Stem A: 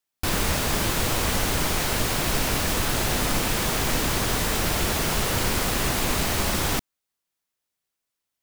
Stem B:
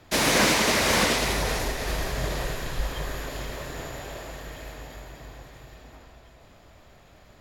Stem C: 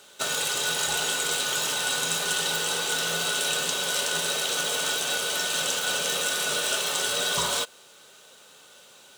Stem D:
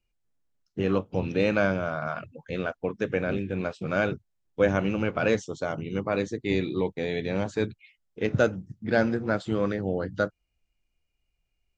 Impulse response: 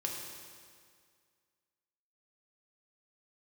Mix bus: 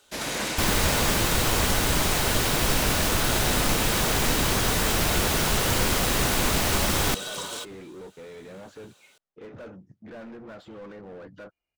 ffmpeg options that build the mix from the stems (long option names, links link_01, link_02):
-filter_complex "[0:a]adelay=350,volume=0.5dB[link_01];[1:a]agate=range=-33dB:threshold=-45dB:ratio=3:detection=peak,volume=-10dB[link_02];[2:a]volume=-8.5dB[link_03];[3:a]asoftclip=type=hard:threshold=-23.5dB,asplit=2[link_04][link_05];[link_05]highpass=frequency=720:poles=1,volume=25dB,asoftclip=type=tanh:threshold=-20dB[link_06];[link_04][link_06]amix=inputs=2:normalize=0,lowpass=frequency=1200:poles=1,volume=-6dB,adelay=1200,volume=-15dB[link_07];[link_01][link_02][link_03][link_07]amix=inputs=4:normalize=0"